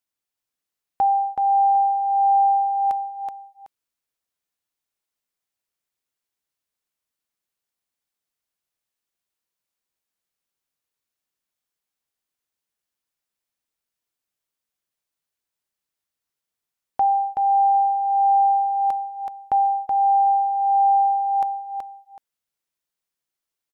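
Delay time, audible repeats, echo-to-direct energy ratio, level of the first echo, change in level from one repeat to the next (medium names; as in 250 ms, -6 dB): 376 ms, 2, -5.0 dB, -5.0 dB, -12.5 dB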